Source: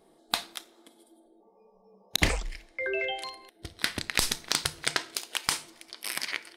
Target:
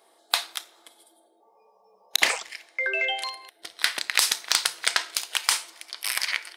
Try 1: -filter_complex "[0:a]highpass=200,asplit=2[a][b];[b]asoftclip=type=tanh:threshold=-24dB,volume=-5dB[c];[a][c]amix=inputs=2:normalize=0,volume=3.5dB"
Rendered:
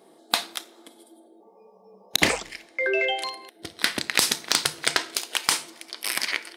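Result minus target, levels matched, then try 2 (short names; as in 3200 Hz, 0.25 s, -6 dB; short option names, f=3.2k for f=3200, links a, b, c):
250 Hz band +15.0 dB
-filter_complex "[0:a]highpass=780,asplit=2[a][b];[b]asoftclip=type=tanh:threshold=-24dB,volume=-5dB[c];[a][c]amix=inputs=2:normalize=0,volume=3.5dB"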